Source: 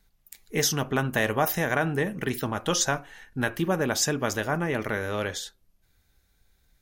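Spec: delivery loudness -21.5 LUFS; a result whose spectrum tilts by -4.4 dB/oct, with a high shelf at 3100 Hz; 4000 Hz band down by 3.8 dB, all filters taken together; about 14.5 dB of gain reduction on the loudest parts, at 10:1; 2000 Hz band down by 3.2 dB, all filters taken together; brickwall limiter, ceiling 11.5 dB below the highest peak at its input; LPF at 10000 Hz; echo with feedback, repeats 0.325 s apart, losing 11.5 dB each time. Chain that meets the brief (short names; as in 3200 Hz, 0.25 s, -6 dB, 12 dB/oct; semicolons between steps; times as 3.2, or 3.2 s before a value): LPF 10000 Hz; bell 2000 Hz -4 dB; high shelf 3100 Hz +3.5 dB; bell 4000 Hz -7.5 dB; compressor 10:1, threshold -36 dBFS; limiter -32.5 dBFS; feedback echo 0.325 s, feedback 27%, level -11.5 dB; gain +21.5 dB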